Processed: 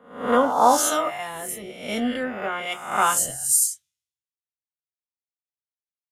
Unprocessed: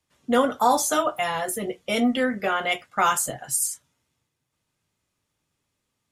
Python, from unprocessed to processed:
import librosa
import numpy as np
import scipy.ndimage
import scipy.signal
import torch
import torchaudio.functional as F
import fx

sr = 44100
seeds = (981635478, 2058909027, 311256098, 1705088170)

y = fx.spec_swells(x, sr, rise_s=1.01)
y = fx.band_widen(y, sr, depth_pct=100)
y = y * 10.0 ** (-4.0 / 20.0)